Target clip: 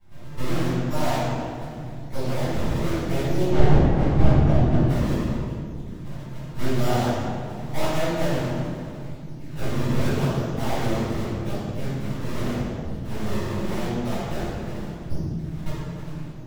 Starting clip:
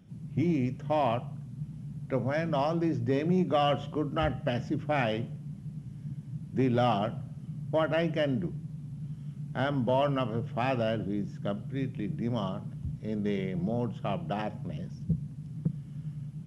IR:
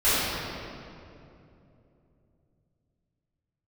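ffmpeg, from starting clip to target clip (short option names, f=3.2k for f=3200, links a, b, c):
-filter_complex "[0:a]acrusher=samples=34:mix=1:aa=0.000001:lfo=1:lforange=54.4:lforate=0.84,asettb=1/sr,asplit=3[a][b][c];[a]atrim=end=3.464[d];[b]atrim=start=3.46:end=4.85,asetpts=PTS-STARTPTS,afade=t=in:d=0.004:c=qsin,afade=t=out:st=1.386:d=0.004:c=qsin,aemphasis=mode=reproduction:type=riaa[e];[c]atrim=start=4.846[f];[d][e]acrossfade=d=0.004:c1=hsin:c2=qsin[g];[g][f]acrossfade=d=0.004:c1=qsin:c2=hsin,aeval=exprs='max(val(0),0)':c=same[h];[1:a]atrim=start_sample=2205,asetrate=61740,aresample=44100[i];[h][i]afir=irnorm=-1:irlink=0,volume=-10dB"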